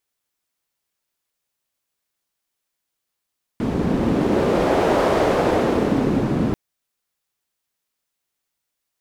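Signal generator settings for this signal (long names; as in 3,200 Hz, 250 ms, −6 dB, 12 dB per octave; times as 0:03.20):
wind from filtered noise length 2.94 s, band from 220 Hz, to 530 Hz, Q 1.4, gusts 1, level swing 3 dB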